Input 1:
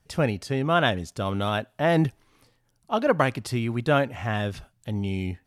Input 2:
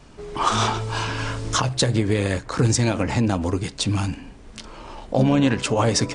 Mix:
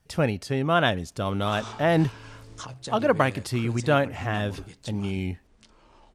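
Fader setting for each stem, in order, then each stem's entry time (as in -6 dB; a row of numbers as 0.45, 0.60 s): 0.0, -17.5 dB; 0.00, 1.05 s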